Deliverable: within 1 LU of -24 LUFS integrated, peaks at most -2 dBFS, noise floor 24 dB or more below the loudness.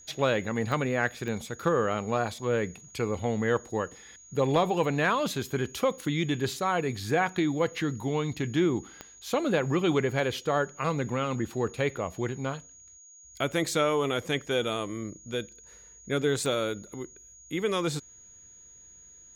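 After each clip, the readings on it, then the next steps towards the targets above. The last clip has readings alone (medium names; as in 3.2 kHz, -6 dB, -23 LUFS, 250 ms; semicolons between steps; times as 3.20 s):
clicks found 4; steady tone 6.7 kHz; tone level -50 dBFS; loudness -29.0 LUFS; peak level -13.0 dBFS; loudness target -24.0 LUFS
-> de-click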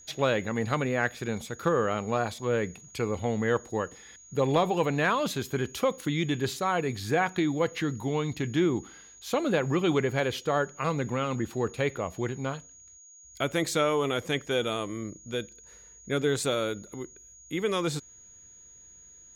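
clicks found 0; steady tone 6.7 kHz; tone level -50 dBFS
-> band-stop 6.7 kHz, Q 30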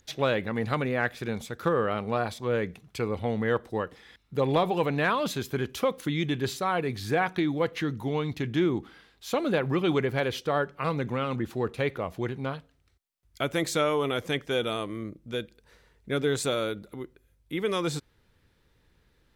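steady tone not found; loudness -29.0 LUFS; peak level -11.0 dBFS; loudness target -24.0 LUFS
-> trim +5 dB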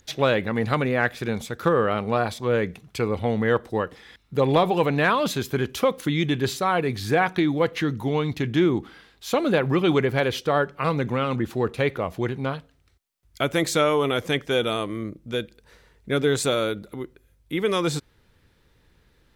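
loudness -24.0 LUFS; peak level -6.0 dBFS; noise floor -62 dBFS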